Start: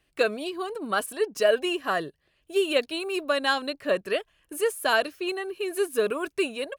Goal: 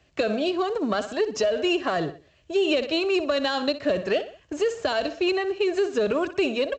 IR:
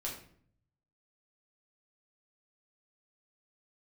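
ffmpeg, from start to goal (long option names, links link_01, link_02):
-filter_complex "[0:a]aeval=exprs='if(lt(val(0),0),0.708*val(0),val(0))':channel_layout=same,lowshelf=frequency=150:gain=11.5,asplit=2[link_01][link_02];[link_02]aecho=0:1:61|122|183:0.158|0.0571|0.0205[link_03];[link_01][link_03]amix=inputs=2:normalize=0,alimiter=limit=-19dB:level=0:latency=1:release=41,highpass=frequency=61:width=0.5412,highpass=frequency=61:width=1.3066,equalizer=frequency=640:width=3:gain=7.5,acrossover=split=370|3000[link_04][link_05][link_06];[link_05]acompressor=threshold=-31dB:ratio=6[link_07];[link_04][link_07][link_06]amix=inputs=3:normalize=0,volume=7dB" -ar 16000 -c:a pcm_alaw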